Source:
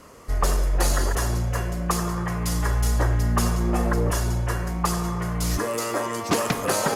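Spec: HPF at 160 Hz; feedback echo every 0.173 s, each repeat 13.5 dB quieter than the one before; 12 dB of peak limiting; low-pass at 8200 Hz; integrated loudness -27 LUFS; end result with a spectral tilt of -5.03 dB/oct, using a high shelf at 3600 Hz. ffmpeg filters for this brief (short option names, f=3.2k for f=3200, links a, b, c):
-af "highpass=160,lowpass=8.2k,highshelf=f=3.6k:g=-4,alimiter=limit=-22dB:level=0:latency=1,aecho=1:1:173|346:0.211|0.0444,volume=4dB"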